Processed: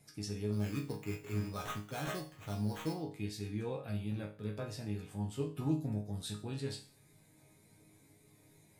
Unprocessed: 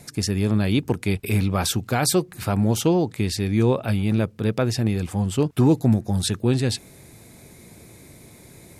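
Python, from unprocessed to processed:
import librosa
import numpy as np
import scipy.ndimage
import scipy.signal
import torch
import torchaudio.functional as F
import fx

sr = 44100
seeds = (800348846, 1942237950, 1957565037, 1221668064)

y = fx.spec_quant(x, sr, step_db=15)
y = fx.sample_hold(y, sr, seeds[0], rate_hz=4800.0, jitter_pct=0, at=(0.51, 2.92), fade=0.02)
y = fx.resonator_bank(y, sr, root=44, chord='sus4', decay_s=0.38)
y = F.gain(torch.from_numpy(y), -2.5).numpy()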